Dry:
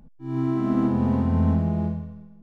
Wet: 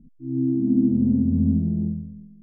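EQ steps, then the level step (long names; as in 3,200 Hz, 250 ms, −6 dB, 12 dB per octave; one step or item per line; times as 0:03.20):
transistor ladder low-pass 320 Hz, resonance 50%
+6.5 dB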